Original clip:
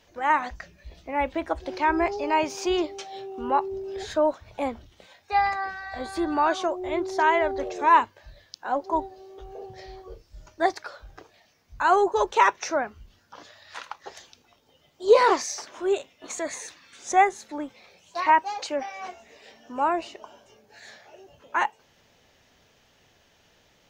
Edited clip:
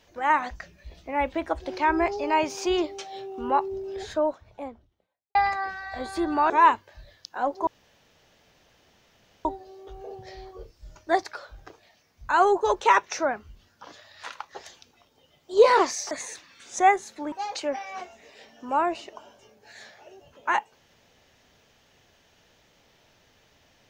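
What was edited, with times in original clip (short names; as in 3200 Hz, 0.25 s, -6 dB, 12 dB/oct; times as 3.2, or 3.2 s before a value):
3.71–5.35 studio fade out
6.5–7.79 cut
8.96 insert room tone 1.78 s
15.62–16.44 cut
17.65–18.39 cut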